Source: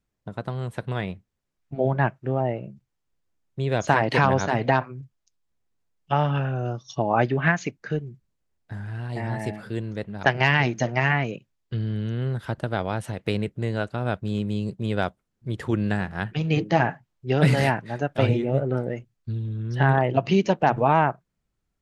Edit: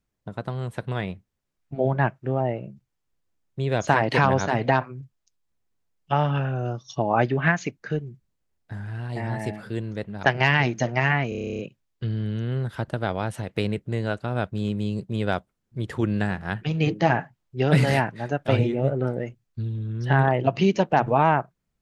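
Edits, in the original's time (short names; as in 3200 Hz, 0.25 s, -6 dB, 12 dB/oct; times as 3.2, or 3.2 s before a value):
11.29 stutter 0.03 s, 11 plays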